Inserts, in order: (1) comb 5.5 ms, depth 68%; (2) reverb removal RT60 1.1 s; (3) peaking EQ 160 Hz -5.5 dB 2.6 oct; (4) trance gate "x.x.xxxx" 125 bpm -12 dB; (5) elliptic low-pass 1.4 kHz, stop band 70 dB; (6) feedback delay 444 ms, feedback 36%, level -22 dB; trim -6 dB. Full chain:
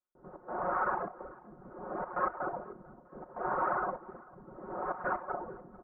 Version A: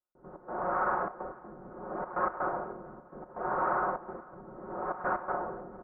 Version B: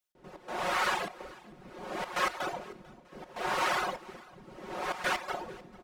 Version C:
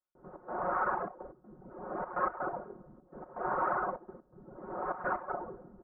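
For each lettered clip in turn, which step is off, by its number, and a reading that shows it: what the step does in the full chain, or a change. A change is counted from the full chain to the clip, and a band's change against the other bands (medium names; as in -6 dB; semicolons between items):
2, loudness change +2.0 LU; 5, 2 kHz band +6.5 dB; 6, momentary loudness spread change +2 LU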